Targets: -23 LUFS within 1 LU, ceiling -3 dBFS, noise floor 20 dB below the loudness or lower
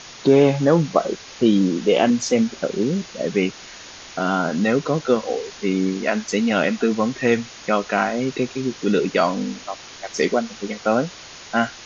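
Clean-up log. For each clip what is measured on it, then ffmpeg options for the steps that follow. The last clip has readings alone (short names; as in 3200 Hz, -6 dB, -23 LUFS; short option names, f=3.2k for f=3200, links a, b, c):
noise floor -40 dBFS; noise floor target -41 dBFS; loudness -21.0 LUFS; peak -2.5 dBFS; loudness target -23.0 LUFS
-> -af "afftdn=nr=6:nf=-40"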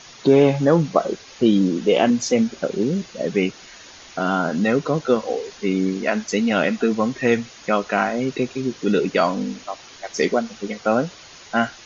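noise floor -44 dBFS; loudness -21.0 LUFS; peak -2.5 dBFS; loudness target -23.0 LUFS
-> -af "volume=-2dB"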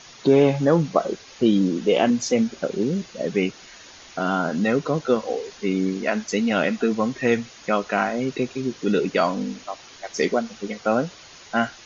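loudness -23.0 LUFS; peak -4.5 dBFS; noise floor -46 dBFS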